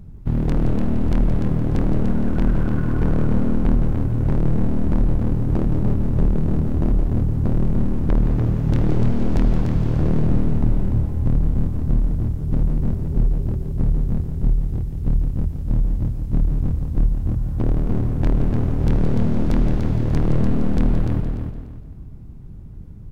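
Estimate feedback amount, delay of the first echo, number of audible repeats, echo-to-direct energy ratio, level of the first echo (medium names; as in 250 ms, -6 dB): no regular repeats, 170 ms, 6, -4.0 dB, -9.5 dB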